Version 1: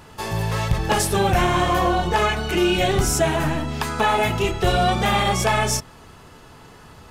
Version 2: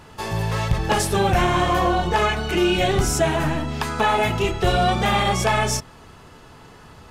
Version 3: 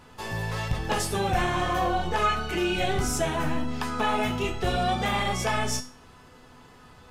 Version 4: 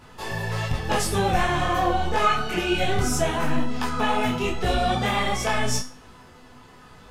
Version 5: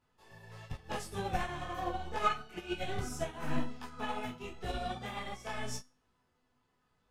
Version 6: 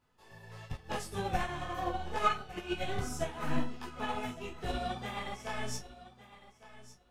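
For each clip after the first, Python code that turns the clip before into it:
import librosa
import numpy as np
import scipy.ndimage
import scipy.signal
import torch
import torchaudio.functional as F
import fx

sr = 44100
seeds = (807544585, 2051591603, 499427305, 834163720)

y1 = fx.high_shelf(x, sr, hz=10000.0, db=-6.0)
y2 = fx.comb_fb(y1, sr, f0_hz=250.0, decay_s=0.37, harmonics='all', damping=0.0, mix_pct=80)
y2 = y2 * 10.0 ** (5.0 / 20.0)
y3 = fx.detune_double(y2, sr, cents=29)
y3 = y3 * 10.0 ** (6.5 / 20.0)
y4 = fx.upward_expand(y3, sr, threshold_db=-30.0, expansion=2.5)
y4 = y4 * 10.0 ** (-7.5 / 20.0)
y5 = fx.echo_feedback(y4, sr, ms=1157, feedback_pct=15, wet_db=-16.5)
y5 = y5 * 10.0 ** (1.5 / 20.0)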